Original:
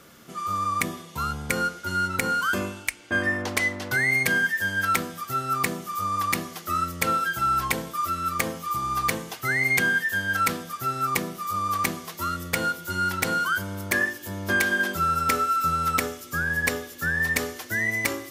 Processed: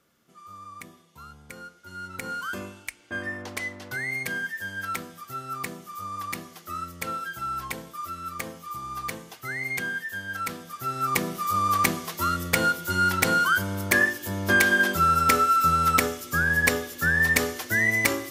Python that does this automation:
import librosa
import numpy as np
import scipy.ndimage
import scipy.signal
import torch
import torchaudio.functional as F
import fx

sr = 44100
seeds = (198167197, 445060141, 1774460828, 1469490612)

y = fx.gain(x, sr, db=fx.line((1.75, -17.0), (2.32, -8.0), (10.45, -8.0), (11.36, 3.0)))